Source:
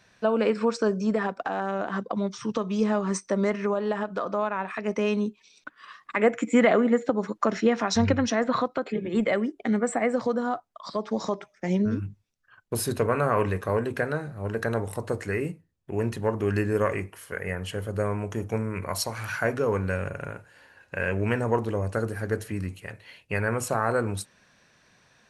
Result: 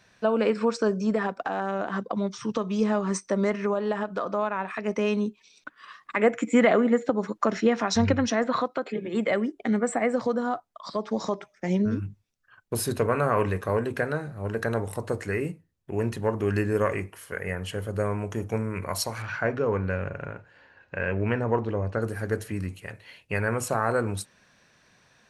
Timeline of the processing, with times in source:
0:08.47–0:09.30: high-pass filter 210 Hz 6 dB per octave
0:19.22–0:22.02: high-frequency loss of the air 160 metres

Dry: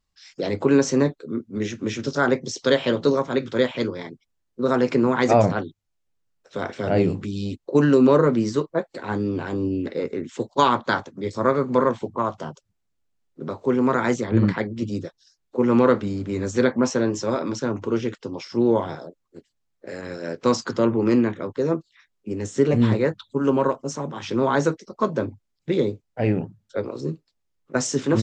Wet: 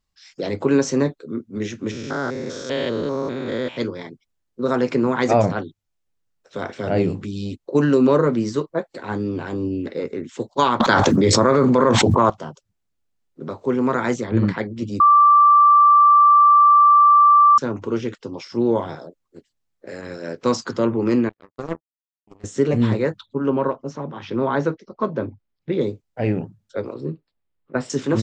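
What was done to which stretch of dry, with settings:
0:01.91–0:03.77: spectrum averaged block by block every 200 ms
0:10.80–0:12.30: envelope flattener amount 100%
0:15.00–0:17.58: beep over 1,170 Hz −8.5 dBFS
0:21.29–0:22.44: power curve on the samples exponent 3
0:23.26–0:25.81: high-frequency loss of the air 200 metres
0:26.94–0:27.90: moving average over 7 samples

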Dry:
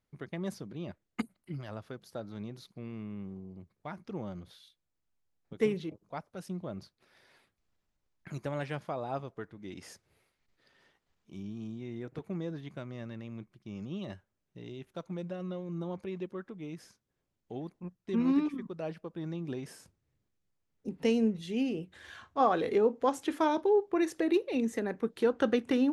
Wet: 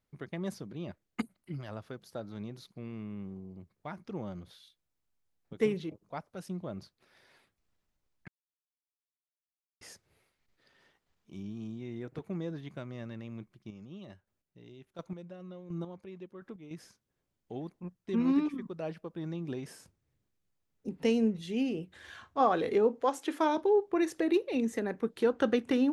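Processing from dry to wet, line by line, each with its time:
0:08.28–0:09.81: silence
0:13.56–0:16.71: square-wave tremolo 1.4 Hz, depth 60%, duty 20%
0:23.01–0:23.55: high-pass filter 370 Hz → 180 Hz

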